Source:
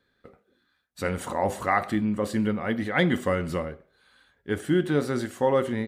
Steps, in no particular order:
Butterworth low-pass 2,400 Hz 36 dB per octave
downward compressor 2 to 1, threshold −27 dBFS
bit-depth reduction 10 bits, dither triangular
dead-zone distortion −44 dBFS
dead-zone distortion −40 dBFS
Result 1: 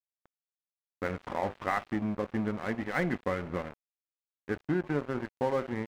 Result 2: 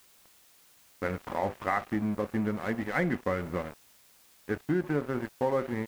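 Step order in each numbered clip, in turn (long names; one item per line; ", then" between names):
downward compressor, then first dead-zone distortion, then bit-depth reduction, then Butterworth low-pass, then second dead-zone distortion
first dead-zone distortion, then Butterworth low-pass, then second dead-zone distortion, then bit-depth reduction, then downward compressor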